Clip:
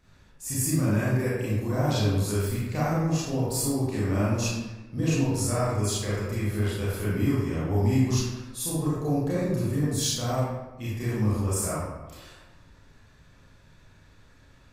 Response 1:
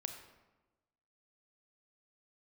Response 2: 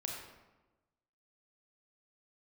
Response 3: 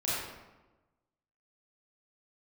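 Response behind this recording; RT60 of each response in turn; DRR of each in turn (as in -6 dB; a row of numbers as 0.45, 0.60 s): 3; 1.1, 1.1, 1.1 s; 5.5, -1.0, -9.5 dB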